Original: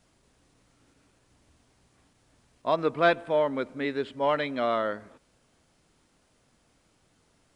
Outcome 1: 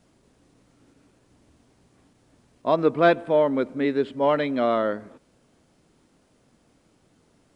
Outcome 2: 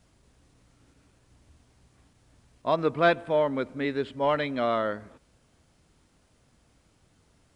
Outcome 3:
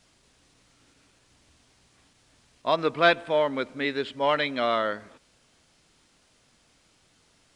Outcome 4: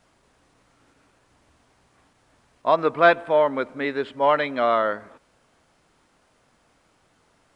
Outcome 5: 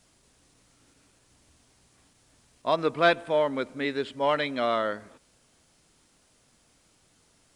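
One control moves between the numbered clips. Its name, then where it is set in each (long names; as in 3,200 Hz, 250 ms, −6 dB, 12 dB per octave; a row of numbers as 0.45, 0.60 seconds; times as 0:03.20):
parametric band, centre frequency: 270, 61, 4,100, 1,100, 12,000 Hertz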